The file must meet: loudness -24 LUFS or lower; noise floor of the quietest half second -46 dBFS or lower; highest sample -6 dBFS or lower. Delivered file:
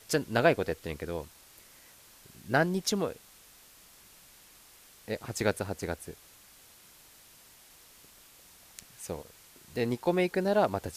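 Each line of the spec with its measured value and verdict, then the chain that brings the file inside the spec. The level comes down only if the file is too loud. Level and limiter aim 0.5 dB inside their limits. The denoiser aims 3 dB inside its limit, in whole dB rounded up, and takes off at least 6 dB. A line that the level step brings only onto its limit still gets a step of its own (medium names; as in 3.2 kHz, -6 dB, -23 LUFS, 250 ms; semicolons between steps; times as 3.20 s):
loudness -30.5 LUFS: pass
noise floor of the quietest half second -56 dBFS: pass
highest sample -9.0 dBFS: pass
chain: none needed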